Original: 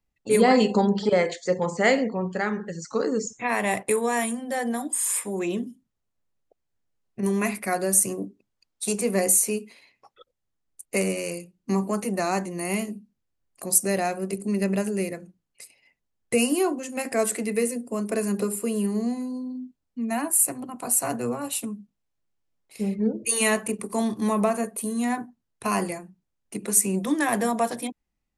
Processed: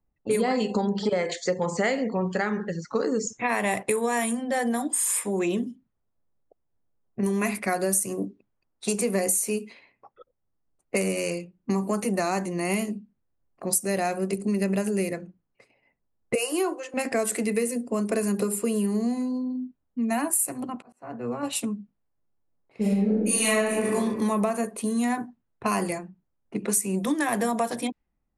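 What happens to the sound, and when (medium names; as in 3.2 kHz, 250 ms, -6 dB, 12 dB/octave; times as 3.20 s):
1.29–2.64 s: tape noise reduction on one side only encoder only
16.35–16.94 s: rippled Chebyshev high-pass 310 Hz, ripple 3 dB
20.56–21.43 s: slow attack 745 ms
22.81–23.94 s: reverb throw, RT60 1.1 s, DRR -10 dB
whole clip: level-controlled noise filter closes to 1.1 kHz, open at -23 dBFS; compression 6:1, threshold -25 dBFS; trim +3.5 dB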